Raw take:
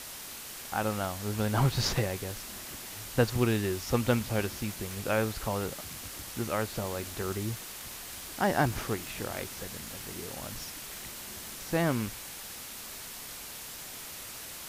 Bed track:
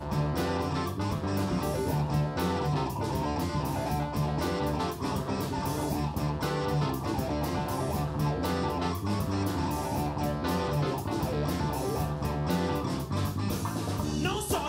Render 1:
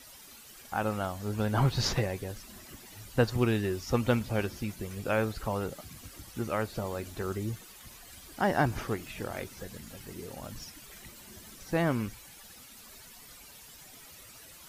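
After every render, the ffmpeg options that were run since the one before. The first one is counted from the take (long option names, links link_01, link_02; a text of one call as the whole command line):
ffmpeg -i in.wav -af "afftdn=noise_reduction=12:noise_floor=-43" out.wav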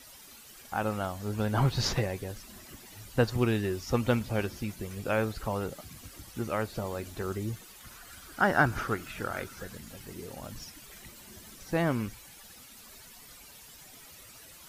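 ffmpeg -i in.wav -filter_complex "[0:a]asettb=1/sr,asplit=3[link_01][link_02][link_03];[link_01]atrim=end=7.844[link_04];[link_02]atrim=start=7.84:end=9.75,asetpts=PTS-STARTPTS,afade=type=in:duration=0.004:curve=qsin,afade=type=out:start_time=1.906:duration=0.004:curve=qsin,equalizer=frequency=1400:width_type=o:width=0.41:gain=12[link_05];[link_03]atrim=start=9.746[link_06];[link_04][link_05]acrossfade=duration=0.004:curve1=hsin:curve2=qsin[link_07];[link_07][link_06]acrossfade=duration=0.004:curve1=qsin:curve2=hsin" out.wav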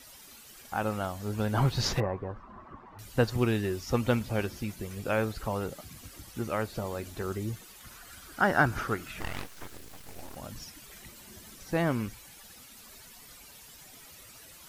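ffmpeg -i in.wav -filter_complex "[0:a]asettb=1/sr,asplit=3[link_01][link_02][link_03];[link_01]atrim=end=2.004[link_04];[link_02]atrim=start=2:end=2.99,asetpts=PTS-STARTPTS,afade=type=in:duration=0.004:curve=qsin,afade=type=out:start_time=0.986:duration=0.004:curve=qsin,lowpass=frequency=1100:width_type=q:width=4.9[link_05];[link_03]atrim=start=2.986[link_06];[link_04][link_05]acrossfade=duration=0.004:curve1=hsin:curve2=qsin[link_07];[link_07][link_06]acrossfade=duration=0.004:curve1=qsin:curve2=hsin,asettb=1/sr,asplit=3[link_08][link_09][link_10];[link_08]atrim=end=9.204[link_11];[link_09]atrim=start=9.2:end=10.36,asetpts=PTS-STARTPTS,afade=type=in:duration=0.004:curve=qsin,afade=type=out:start_time=1.156:duration=0.004:curve=qsin,aeval=exprs='abs(val(0))':channel_layout=same[link_12];[link_10]atrim=start=10.356[link_13];[link_11][link_12]acrossfade=duration=0.004:curve1=hsin:curve2=qsin[link_14];[link_14][link_13]acrossfade=duration=0.004:curve1=qsin:curve2=hsin" out.wav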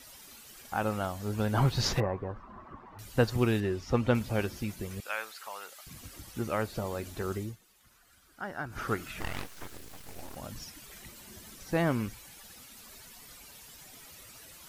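ffmpeg -i in.wav -filter_complex "[0:a]asettb=1/sr,asplit=3[link_01][link_02][link_03];[link_01]atrim=end=3.604[link_04];[link_02]atrim=start=3.6:end=4.15,asetpts=PTS-STARTPTS,afade=type=in:duration=0.004:curve=qsin,afade=type=out:start_time=0.546:duration=0.004:curve=qsin,aemphasis=mode=reproduction:type=50fm[link_05];[link_03]atrim=start=4.146[link_06];[link_04][link_05]acrossfade=duration=0.004:curve1=hsin:curve2=qsin[link_07];[link_07][link_06]acrossfade=duration=0.004:curve1=qsin:curve2=hsin,asettb=1/sr,asplit=3[link_08][link_09][link_10];[link_08]atrim=end=5.004[link_11];[link_09]atrim=start=5:end=5.87,asetpts=PTS-STARTPTS,afade=type=in:duration=0.004:curve=qsin,afade=type=out:start_time=0.866:duration=0.004:curve=qsin,highpass=1200[link_12];[link_10]atrim=start=5.866[link_13];[link_11][link_12]acrossfade=duration=0.004:curve1=hsin:curve2=qsin[link_14];[link_14][link_13]acrossfade=duration=0.004:curve1=qsin:curve2=hsin,asplit=3[link_15][link_16][link_17];[link_15]atrim=end=7.57,asetpts=PTS-STARTPTS,afade=type=out:start_time=7.37:duration=0.2:silence=0.199526[link_18];[link_16]atrim=start=7.57:end=8.69,asetpts=PTS-STARTPTS,volume=-14dB[link_19];[link_17]atrim=start=8.69,asetpts=PTS-STARTPTS,afade=type=in:duration=0.2:silence=0.199526[link_20];[link_18][link_19][link_20]concat=n=3:v=0:a=1" out.wav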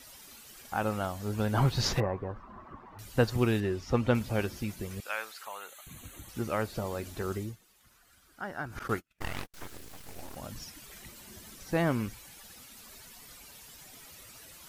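ffmpeg -i in.wav -filter_complex "[0:a]asettb=1/sr,asplit=3[link_01][link_02][link_03];[link_01]atrim=end=5.454[link_04];[link_02]atrim=start=5.45:end=6.29,asetpts=PTS-STARTPTS,afade=type=in:duration=0.004:curve=qsin,afade=type=out:start_time=0.836:duration=0.004:curve=qsin,asuperstop=centerf=5100:order=12:qfactor=3[link_05];[link_03]atrim=start=6.286[link_06];[link_04][link_05]acrossfade=duration=0.004:curve1=hsin:curve2=qsin[link_07];[link_07][link_06]acrossfade=duration=0.004:curve1=qsin:curve2=hsin,asettb=1/sr,asplit=3[link_08][link_09][link_10];[link_08]atrim=end=8.794[link_11];[link_09]atrim=start=8.79:end=9.54,asetpts=PTS-STARTPTS,afade=type=in:duration=0.004:curve=qsin,afade=type=out:start_time=0.746:duration=0.004:curve=qsin,agate=range=-41dB:threshold=-38dB:ratio=16:release=100:detection=peak[link_12];[link_10]atrim=start=9.536[link_13];[link_11][link_12]acrossfade=duration=0.004:curve1=hsin:curve2=qsin[link_14];[link_14][link_13]acrossfade=duration=0.004:curve1=qsin:curve2=hsin" out.wav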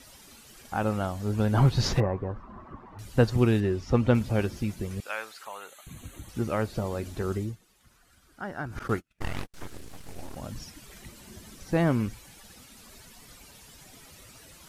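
ffmpeg -i in.wav -af "lowpass=12000,lowshelf=frequency=500:gain=6" out.wav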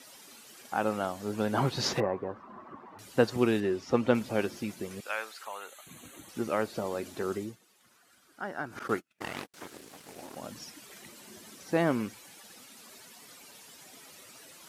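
ffmpeg -i in.wav -af "highpass=250" out.wav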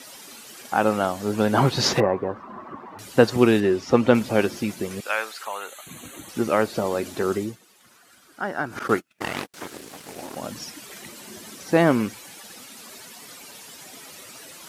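ffmpeg -i in.wav -af "volume=9dB,alimiter=limit=-2dB:level=0:latency=1" out.wav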